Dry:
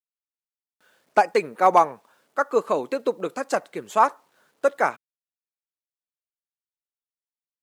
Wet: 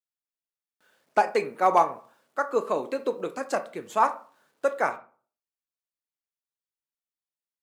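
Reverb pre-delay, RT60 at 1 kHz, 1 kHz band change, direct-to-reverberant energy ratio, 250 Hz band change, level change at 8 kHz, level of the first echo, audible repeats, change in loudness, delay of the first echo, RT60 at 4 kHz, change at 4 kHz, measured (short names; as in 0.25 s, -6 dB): 16 ms, 0.40 s, -3.5 dB, 9.0 dB, -3.5 dB, -4.0 dB, none, none, -3.5 dB, none, 0.25 s, -3.5 dB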